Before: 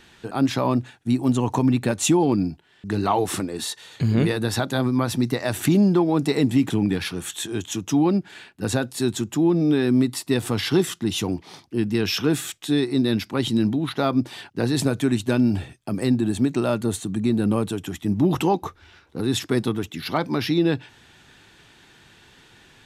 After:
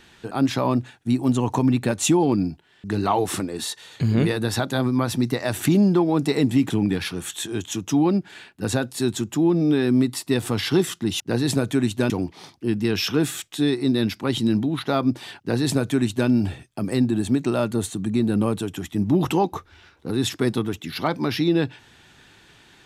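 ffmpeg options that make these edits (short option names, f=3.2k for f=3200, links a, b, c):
-filter_complex "[0:a]asplit=3[a][b][c];[a]atrim=end=11.202[d];[b]atrim=start=14.488:end=15.392[e];[c]atrim=start=11.198[f];[d][e]acrossfade=d=0.004:c1=hsin:c2=hsin[g];[g][f]acrossfade=d=0.004:c1=hsin:c2=hsin"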